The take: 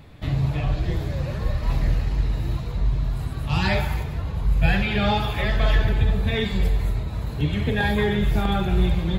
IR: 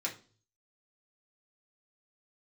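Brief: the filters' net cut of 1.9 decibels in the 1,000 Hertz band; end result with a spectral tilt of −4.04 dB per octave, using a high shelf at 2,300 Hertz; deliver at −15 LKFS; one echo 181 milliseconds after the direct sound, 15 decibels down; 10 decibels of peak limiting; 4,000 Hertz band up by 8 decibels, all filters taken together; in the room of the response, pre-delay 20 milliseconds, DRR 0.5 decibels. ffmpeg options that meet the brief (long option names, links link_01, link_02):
-filter_complex "[0:a]equalizer=frequency=1000:width_type=o:gain=-3.5,highshelf=frequency=2300:gain=4,equalizer=frequency=4000:width_type=o:gain=6.5,alimiter=limit=-16dB:level=0:latency=1,aecho=1:1:181:0.178,asplit=2[link_01][link_02];[1:a]atrim=start_sample=2205,adelay=20[link_03];[link_02][link_03]afir=irnorm=-1:irlink=0,volume=-3.5dB[link_04];[link_01][link_04]amix=inputs=2:normalize=0,volume=9.5dB"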